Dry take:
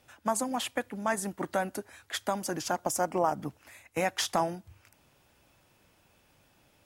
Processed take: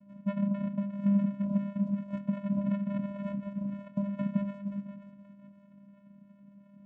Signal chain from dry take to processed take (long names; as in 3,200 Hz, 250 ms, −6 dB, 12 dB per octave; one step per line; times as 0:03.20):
in parallel at −10 dB: bit-depth reduction 8 bits, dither none
on the sum: rectangular room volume 89 cubic metres, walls mixed, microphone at 0.45 metres
all-pass phaser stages 2, 2.8 Hz, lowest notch 170–1,700 Hz
sample-and-hold swept by an LFO 21×, swing 60% 0.45 Hz
dynamic equaliser 3,300 Hz, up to −6 dB, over −49 dBFS, Q 1.1
downward compressor 3 to 1, threshold −43 dBFS, peak gain reduction 16 dB
tilt shelving filter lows +9 dB, about 1,200 Hz
mains-hum notches 60/120/180/240 Hz
hollow resonant body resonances 220/810/3,200 Hz, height 14 dB
on a send: feedback echo with a high-pass in the loop 528 ms, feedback 37%, high-pass 400 Hz, level −11 dB
on the sum: channel vocoder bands 4, square 200 Hz